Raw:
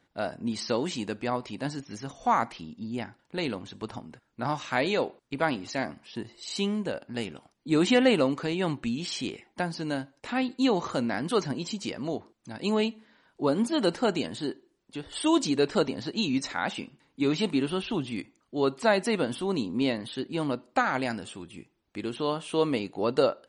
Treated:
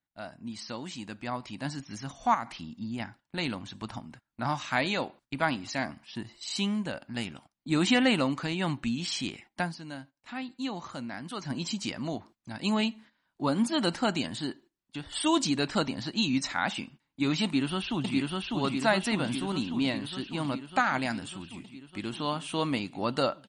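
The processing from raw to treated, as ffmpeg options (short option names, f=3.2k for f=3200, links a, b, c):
-filter_complex "[0:a]asettb=1/sr,asplit=3[a][b][c];[a]atrim=end=2.344[d];[b]atrim=start=2.34:end=3,asetpts=PTS-STARTPTS,afade=t=in:d=0.004:c=qsin,afade=t=out:st=0.656:d=0.004:c=qsin,acompressor=threshold=-30dB:ratio=3:attack=3.2:release=140:knee=1:detection=peak[e];[c]atrim=start=2.996[f];[d][e]acrossfade=d=0.004:c1=hsin:c2=qsin[g];[g][f]acrossfade=d=0.004:c1=qsin:c2=hsin,asplit=2[h][i];[i]afade=t=in:st=17.44:d=0.01,afade=t=out:st=18.16:d=0.01,aecho=0:1:600|1200|1800|2400|3000|3600|4200|4800|5400|6000|6600|7200:0.891251|0.623876|0.436713|0.305699|0.213989|0.149793|0.104855|0.0733983|0.0513788|0.0359652|0.0251756|0.0176229[j];[h][j]amix=inputs=2:normalize=0,asplit=3[k][l][m];[k]atrim=end=9.77,asetpts=PTS-STARTPTS,afade=t=out:st=9.63:d=0.14:silence=0.354813[n];[l]atrim=start=9.77:end=11.42,asetpts=PTS-STARTPTS,volume=-9dB[o];[m]atrim=start=11.42,asetpts=PTS-STARTPTS,afade=t=in:d=0.14:silence=0.354813[p];[n][o][p]concat=n=3:v=0:a=1,agate=range=-14dB:threshold=-50dB:ratio=16:detection=peak,equalizer=f=440:w=2.1:g=-12.5,dynaudnorm=f=930:g=3:m=9.5dB,volume=-7.5dB"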